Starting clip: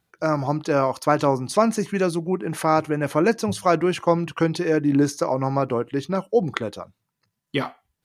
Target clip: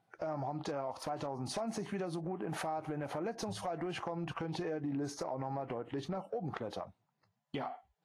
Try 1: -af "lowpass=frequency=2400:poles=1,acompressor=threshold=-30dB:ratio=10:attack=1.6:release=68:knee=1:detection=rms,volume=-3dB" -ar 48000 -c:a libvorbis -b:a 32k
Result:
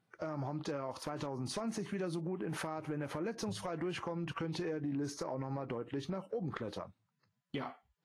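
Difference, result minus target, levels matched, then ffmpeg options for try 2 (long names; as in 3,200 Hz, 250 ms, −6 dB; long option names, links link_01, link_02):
1,000 Hz band −3.5 dB
-af "lowpass=frequency=2400:poles=1,equalizer=frequency=740:width=2.5:gain=12,acompressor=threshold=-30dB:ratio=10:attack=1.6:release=68:knee=1:detection=rms,volume=-3dB" -ar 48000 -c:a libvorbis -b:a 32k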